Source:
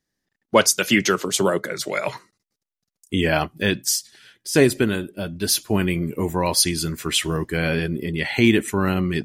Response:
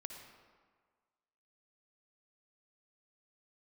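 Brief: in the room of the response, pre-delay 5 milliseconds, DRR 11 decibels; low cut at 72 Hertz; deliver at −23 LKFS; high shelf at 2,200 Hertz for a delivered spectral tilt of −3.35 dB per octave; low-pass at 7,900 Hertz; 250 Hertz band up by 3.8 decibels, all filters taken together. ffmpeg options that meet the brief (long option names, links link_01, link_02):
-filter_complex "[0:a]highpass=72,lowpass=7900,equalizer=frequency=250:width_type=o:gain=5,highshelf=frequency=2200:gain=7.5,asplit=2[link_01][link_02];[1:a]atrim=start_sample=2205,adelay=5[link_03];[link_02][link_03]afir=irnorm=-1:irlink=0,volume=-7.5dB[link_04];[link_01][link_04]amix=inputs=2:normalize=0,volume=-6dB"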